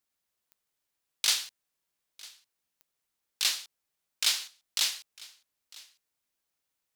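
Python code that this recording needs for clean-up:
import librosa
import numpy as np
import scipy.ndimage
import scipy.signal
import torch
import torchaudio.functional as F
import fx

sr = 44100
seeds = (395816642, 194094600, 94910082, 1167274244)

y = fx.fix_declip(x, sr, threshold_db=-14.0)
y = fx.fix_declick_ar(y, sr, threshold=10.0)
y = fx.fix_echo_inverse(y, sr, delay_ms=952, level_db=-22.0)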